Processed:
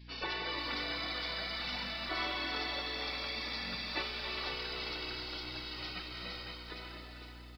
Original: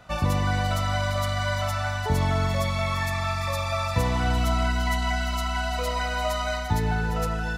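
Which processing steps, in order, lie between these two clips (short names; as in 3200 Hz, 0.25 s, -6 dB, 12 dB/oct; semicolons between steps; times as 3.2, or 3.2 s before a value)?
ending faded out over 2.50 s; notches 60/120 Hz; in parallel at -3 dB: compressor, threshold -35 dBFS, peak gain reduction 15.5 dB; on the sum: spectral gate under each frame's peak -20 dB weak; hum 60 Hz, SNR 13 dB; on a send: diffused feedback echo 0.453 s, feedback 46%, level -11.5 dB; on the sum: downsampling 11025 Hz; lo-fi delay 0.497 s, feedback 35%, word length 10-bit, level -10 dB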